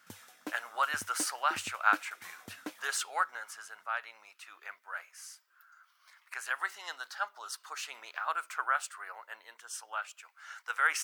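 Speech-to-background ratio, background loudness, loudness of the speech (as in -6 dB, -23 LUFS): 13.5 dB, -48.5 LUFS, -35.0 LUFS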